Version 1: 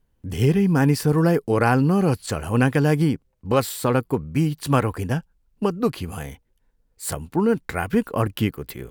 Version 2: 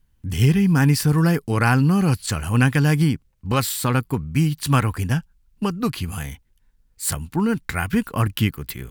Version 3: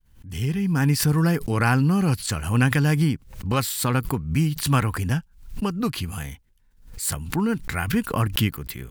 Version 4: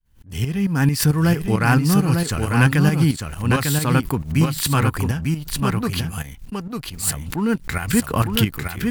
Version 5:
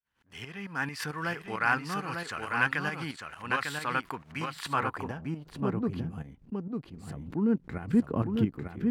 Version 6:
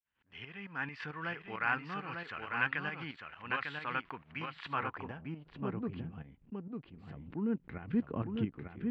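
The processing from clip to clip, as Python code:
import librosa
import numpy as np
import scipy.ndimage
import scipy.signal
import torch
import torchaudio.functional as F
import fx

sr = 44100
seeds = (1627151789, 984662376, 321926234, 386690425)

y1 = fx.peak_eq(x, sr, hz=500.0, db=-12.5, octaves=1.8)
y1 = y1 * librosa.db_to_amplitude(5.5)
y2 = fx.fade_in_head(y1, sr, length_s=0.99)
y2 = fx.pre_swell(y2, sr, db_per_s=100.0)
y2 = y2 * librosa.db_to_amplitude(-2.5)
y3 = fx.tremolo_shape(y2, sr, shape='saw_up', hz=4.5, depth_pct=65)
y3 = y3 + 10.0 ** (-4.5 / 20.0) * np.pad(y3, (int(899 * sr / 1000.0), 0))[:len(y3)]
y3 = fx.leveller(y3, sr, passes=1)
y3 = y3 * librosa.db_to_amplitude(1.5)
y4 = fx.filter_sweep_bandpass(y3, sr, from_hz=1500.0, to_hz=290.0, start_s=4.42, end_s=5.95, q=0.96)
y4 = y4 * librosa.db_to_amplitude(-4.0)
y5 = fx.ladder_lowpass(y4, sr, hz=3500.0, resonance_pct=35)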